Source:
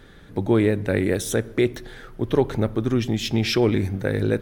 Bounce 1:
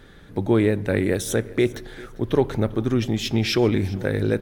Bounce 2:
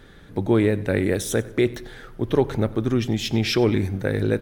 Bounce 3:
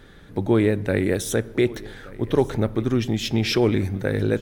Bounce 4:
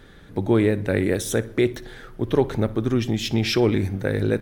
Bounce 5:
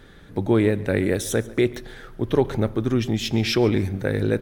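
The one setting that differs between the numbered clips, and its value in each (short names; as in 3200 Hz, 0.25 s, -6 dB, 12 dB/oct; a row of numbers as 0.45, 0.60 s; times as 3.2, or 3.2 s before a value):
feedback echo, time: 397, 94, 1177, 60, 140 ms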